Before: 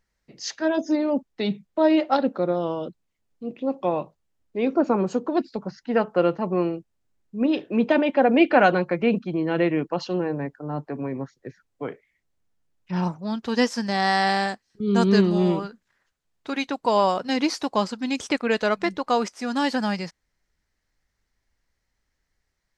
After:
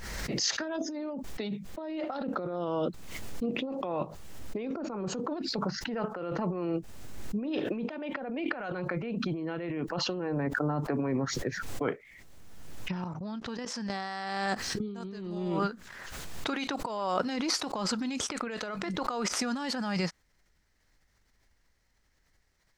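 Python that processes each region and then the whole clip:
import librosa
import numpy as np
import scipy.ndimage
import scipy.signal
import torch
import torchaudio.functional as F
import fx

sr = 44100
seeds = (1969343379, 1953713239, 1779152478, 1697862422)

y = fx.chain(x, sr, fx.level_steps(step_db=20),
    fx.air_absorb(metres=62.0), at=(13.04, 13.9))
y = fx.over_compress(y, sr, threshold_db=-31.0, ratio=-1.0)
y = fx.dynamic_eq(y, sr, hz=1300.0, q=3.7, threshold_db=-50.0, ratio=4.0, max_db=5)
y = fx.pre_swell(y, sr, db_per_s=29.0)
y = y * librosa.db_to_amplitude(-4.0)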